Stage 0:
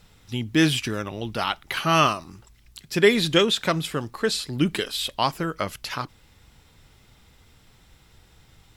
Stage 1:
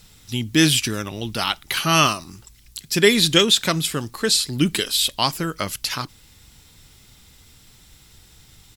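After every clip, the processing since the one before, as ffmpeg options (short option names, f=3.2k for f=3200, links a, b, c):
-af "firequalizer=gain_entry='entry(270,0);entry(520,-4);entry(4300,6);entry(8100,9)':delay=0.05:min_phase=1,volume=3dB"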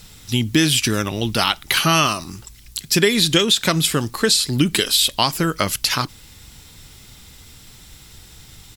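-af "acompressor=threshold=-19dB:ratio=6,volume=6.5dB"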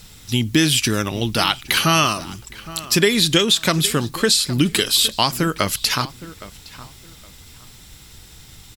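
-filter_complex "[0:a]asplit=2[a][b];[b]adelay=815,lowpass=f=2.6k:p=1,volume=-17dB,asplit=2[c][d];[d]adelay=815,lowpass=f=2.6k:p=1,volume=0.25[e];[a][c][e]amix=inputs=3:normalize=0"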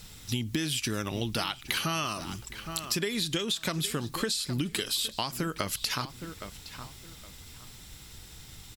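-af "acompressor=threshold=-23dB:ratio=6,volume=-4.5dB"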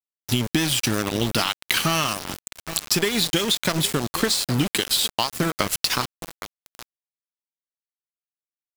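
-af "aeval=exprs='val(0)*gte(abs(val(0)),0.0251)':c=same,volume=9dB"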